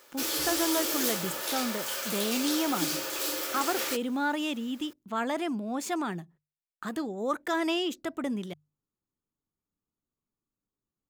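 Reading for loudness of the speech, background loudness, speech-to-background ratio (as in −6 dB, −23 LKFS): −32.0 LKFS, −30.0 LKFS, −2.0 dB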